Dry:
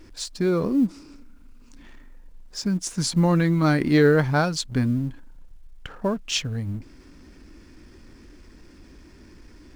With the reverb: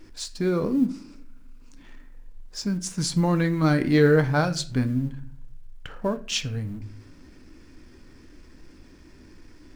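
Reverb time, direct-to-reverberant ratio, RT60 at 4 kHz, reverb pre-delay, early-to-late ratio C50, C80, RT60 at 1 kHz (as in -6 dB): 0.45 s, 9.0 dB, 0.35 s, 4 ms, 16.0 dB, 19.5 dB, 0.40 s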